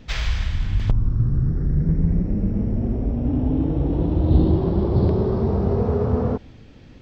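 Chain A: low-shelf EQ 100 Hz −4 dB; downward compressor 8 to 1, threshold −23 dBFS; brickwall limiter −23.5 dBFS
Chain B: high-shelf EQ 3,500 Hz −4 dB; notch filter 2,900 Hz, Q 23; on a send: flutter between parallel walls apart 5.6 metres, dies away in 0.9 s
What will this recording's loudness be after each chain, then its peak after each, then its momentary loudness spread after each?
−32.0, −18.0 LKFS; −23.5, −2.5 dBFS; 3, 7 LU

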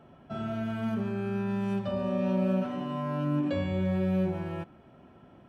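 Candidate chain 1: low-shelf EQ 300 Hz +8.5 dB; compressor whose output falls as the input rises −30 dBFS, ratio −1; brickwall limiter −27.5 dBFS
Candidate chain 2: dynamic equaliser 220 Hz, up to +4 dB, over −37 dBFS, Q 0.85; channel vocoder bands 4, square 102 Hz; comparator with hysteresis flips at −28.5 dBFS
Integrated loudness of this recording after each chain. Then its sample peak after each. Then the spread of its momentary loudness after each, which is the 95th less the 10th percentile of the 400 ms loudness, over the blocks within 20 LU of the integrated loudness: −35.5, −30.0 LKFS; −27.5, −22.0 dBFS; 6, 4 LU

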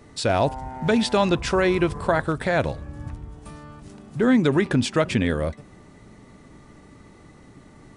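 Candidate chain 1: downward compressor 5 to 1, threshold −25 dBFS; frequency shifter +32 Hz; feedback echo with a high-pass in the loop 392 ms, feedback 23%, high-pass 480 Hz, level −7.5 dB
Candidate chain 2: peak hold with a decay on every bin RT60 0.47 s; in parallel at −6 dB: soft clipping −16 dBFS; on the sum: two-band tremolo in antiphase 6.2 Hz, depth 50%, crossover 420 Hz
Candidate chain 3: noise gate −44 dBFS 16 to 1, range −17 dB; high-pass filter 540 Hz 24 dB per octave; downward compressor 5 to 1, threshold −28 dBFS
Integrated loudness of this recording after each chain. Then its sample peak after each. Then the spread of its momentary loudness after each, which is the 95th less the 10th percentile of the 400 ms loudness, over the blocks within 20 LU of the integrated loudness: −30.0, −20.5, −32.5 LKFS; −11.0, −4.5, −14.0 dBFS; 21, 18, 18 LU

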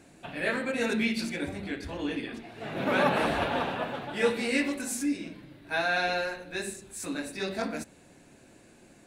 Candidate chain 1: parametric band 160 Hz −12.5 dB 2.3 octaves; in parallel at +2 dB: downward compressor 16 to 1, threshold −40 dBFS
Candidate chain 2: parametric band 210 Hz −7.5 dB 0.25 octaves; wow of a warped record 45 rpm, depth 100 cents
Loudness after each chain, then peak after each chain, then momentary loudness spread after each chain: −30.0, −30.5 LKFS; −11.5, −12.0 dBFS; 10, 12 LU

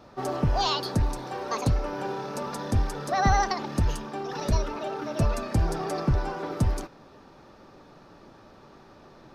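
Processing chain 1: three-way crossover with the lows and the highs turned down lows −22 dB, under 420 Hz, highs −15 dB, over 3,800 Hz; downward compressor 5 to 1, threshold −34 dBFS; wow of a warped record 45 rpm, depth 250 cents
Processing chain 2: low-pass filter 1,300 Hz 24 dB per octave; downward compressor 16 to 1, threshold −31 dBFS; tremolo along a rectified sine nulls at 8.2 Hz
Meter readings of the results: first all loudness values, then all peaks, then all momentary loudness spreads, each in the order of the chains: −38.5, −40.0 LKFS; −24.5, −23.0 dBFS; 19, 17 LU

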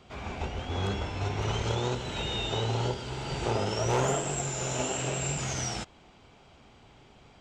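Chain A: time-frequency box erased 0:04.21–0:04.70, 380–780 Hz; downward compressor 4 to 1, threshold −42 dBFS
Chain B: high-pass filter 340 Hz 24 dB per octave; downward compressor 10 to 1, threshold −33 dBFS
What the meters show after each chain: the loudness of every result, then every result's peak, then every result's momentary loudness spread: −43.0, −37.0 LKFS; −28.0, −23.0 dBFS; 14, 4 LU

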